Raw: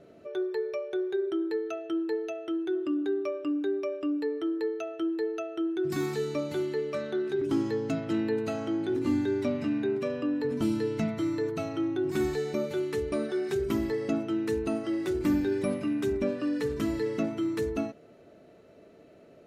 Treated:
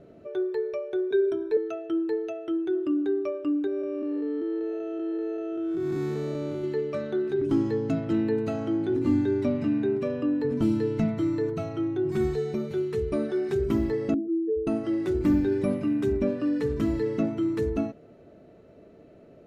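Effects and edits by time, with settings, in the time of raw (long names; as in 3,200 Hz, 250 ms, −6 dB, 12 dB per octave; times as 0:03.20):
0:01.10–0:01.57: EQ curve with evenly spaced ripples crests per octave 1.6, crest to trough 17 dB
0:03.67–0:06.64: spectrum smeared in time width 311 ms
0:11.53–0:13.13: notch comb filter 290 Hz
0:14.14–0:14.67: expanding power law on the bin magnitudes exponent 3.5
0:15.37–0:16.14: floating-point word with a short mantissa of 6 bits
whole clip: spectral tilt −2 dB per octave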